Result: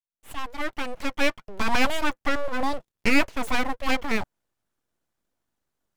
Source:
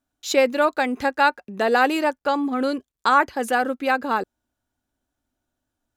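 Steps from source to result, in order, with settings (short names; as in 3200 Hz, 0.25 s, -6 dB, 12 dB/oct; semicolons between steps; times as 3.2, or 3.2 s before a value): opening faded in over 1.55 s; dynamic EQ 3600 Hz, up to -3 dB, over -38 dBFS, Q 0.72; full-wave rectifier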